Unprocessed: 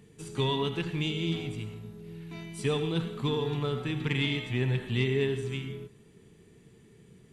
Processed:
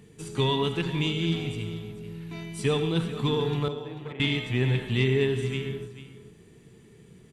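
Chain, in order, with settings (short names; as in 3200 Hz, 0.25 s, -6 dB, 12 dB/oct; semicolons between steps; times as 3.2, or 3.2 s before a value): 3.68–4.2 band-pass 620 Hz, Q 2.4; on a send: echo 0.441 s -13.5 dB; on the sum: gain +3.5 dB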